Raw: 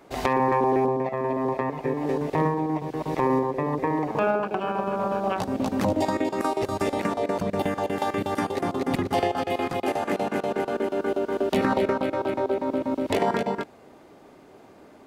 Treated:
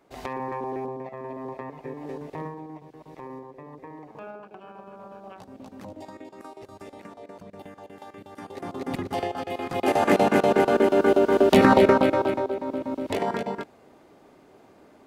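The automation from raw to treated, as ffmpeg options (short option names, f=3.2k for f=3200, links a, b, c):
-af "volume=14.5dB,afade=t=out:st=2.14:d=0.85:silence=0.421697,afade=t=in:st=8.34:d=0.55:silence=0.237137,afade=t=in:st=9.66:d=0.41:silence=0.251189,afade=t=out:st=11.98:d=0.52:silence=0.298538"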